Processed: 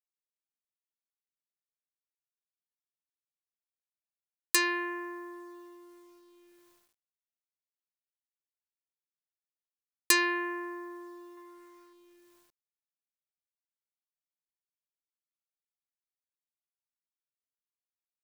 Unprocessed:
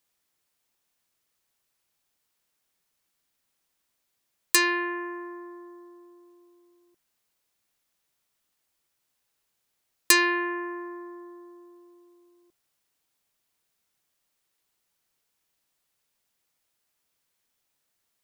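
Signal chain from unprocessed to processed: requantised 10-bit, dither none; 11.37–11.93 band shelf 1500 Hz +8 dB 1.3 oct; gain -5 dB

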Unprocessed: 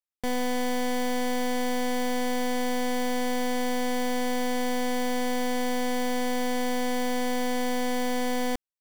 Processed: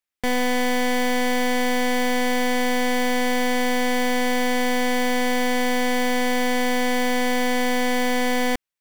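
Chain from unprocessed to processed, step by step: bell 2100 Hz +6 dB 1.2 oct; gain +5 dB

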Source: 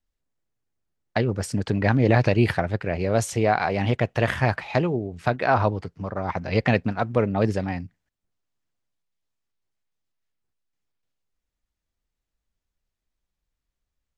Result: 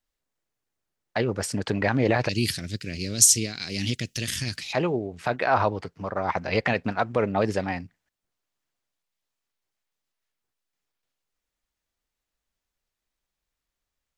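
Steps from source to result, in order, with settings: low shelf 270 Hz -10.5 dB; limiter -14 dBFS, peak gain reduction 6.5 dB; 2.29–4.73 EQ curve 280 Hz 0 dB, 810 Hz -29 dB, 5300 Hz +14 dB; gain +3.5 dB

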